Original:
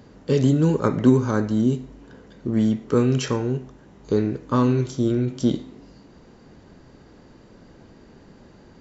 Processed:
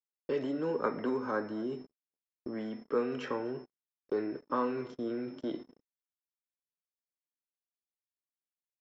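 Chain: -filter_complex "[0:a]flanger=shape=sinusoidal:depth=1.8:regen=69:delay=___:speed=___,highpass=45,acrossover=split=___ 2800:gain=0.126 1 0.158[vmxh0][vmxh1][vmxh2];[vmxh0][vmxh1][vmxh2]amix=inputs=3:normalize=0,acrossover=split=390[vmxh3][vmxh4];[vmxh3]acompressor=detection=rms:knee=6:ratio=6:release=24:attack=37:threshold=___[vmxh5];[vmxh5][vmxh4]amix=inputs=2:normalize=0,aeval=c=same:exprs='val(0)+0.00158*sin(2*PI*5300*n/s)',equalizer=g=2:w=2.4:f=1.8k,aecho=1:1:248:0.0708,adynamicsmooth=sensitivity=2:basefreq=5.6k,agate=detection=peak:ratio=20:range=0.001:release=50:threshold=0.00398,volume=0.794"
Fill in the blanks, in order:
2.5, 0.51, 220, 0.00794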